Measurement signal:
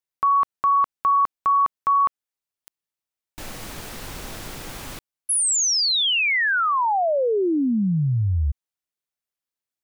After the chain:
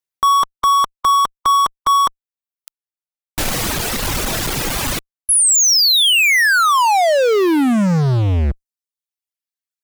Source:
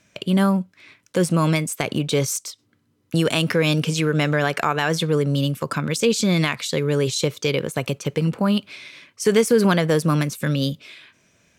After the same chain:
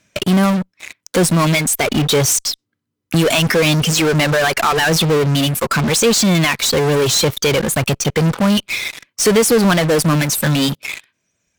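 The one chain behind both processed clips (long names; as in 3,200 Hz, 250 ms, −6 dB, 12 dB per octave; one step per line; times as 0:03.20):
reverb reduction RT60 1.9 s
high-shelf EQ 2,800 Hz +2 dB
in parallel at −4 dB: fuzz pedal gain 42 dB, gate −46 dBFS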